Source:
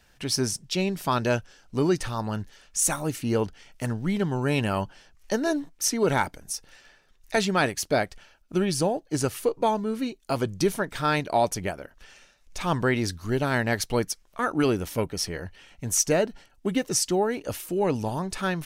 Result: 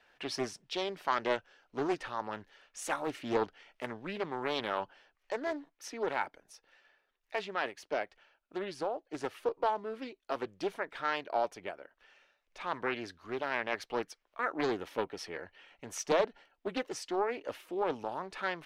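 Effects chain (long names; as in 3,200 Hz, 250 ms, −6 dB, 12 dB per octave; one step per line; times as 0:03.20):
three-way crossover with the lows and the highs turned down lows −20 dB, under 320 Hz, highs −19 dB, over 3,700 Hz
speech leveller 2 s
highs frequency-modulated by the lows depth 0.4 ms
level −6.5 dB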